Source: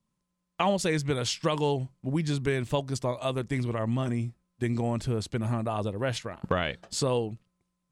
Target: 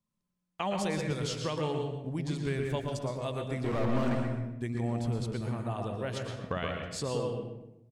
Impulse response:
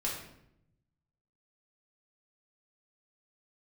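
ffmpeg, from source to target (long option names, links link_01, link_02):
-filter_complex "[0:a]asettb=1/sr,asplit=3[link_01][link_02][link_03];[link_01]atrim=end=3.644[link_04];[link_02]atrim=start=3.64:end=4.15,asetpts=PTS-STARTPTS,afade=type=in:duration=0.004:curve=qsin,afade=type=out:start_time=0.506:duration=0.004:curve=qsin,asplit=2[link_05][link_06];[link_06]highpass=frequency=720:poles=1,volume=36dB,asoftclip=type=tanh:threshold=-17.5dB[link_07];[link_05][link_07]amix=inputs=2:normalize=0,lowpass=frequency=1200:poles=1,volume=-6dB[link_08];[link_03]atrim=start=4.146[link_09];[link_04][link_08]acrossfade=duration=0.004:curve1=hsin:curve2=qsin[link_10];[link_10][link_09]acrossfade=duration=0.004:curve1=qsin:curve2=hsin,asplit=2[link_11][link_12];[link_12]adelay=127,lowpass=frequency=1800:poles=1,volume=-5dB,asplit=2[link_13][link_14];[link_14]adelay=127,lowpass=frequency=1800:poles=1,volume=0.29,asplit=2[link_15][link_16];[link_16]adelay=127,lowpass=frequency=1800:poles=1,volume=0.29,asplit=2[link_17][link_18];[link_18]adelay=127,lowpass=frequency=1800:poles=1,volume=0.29[link_19];[link_11][link_13][link_15][link_17][link_19]amix=inputs=5:normalize=0,asplit=2[link_20][link_21];[1:a]atrim=start_sample=2205,adelay=113[link_22];[link_21][link_22]afir=irnorm=-1:irlink=0,volume=-9dB[link_23];[link_20][link_23]amix=inputs=2:normalize=0,volume=-7.5dB"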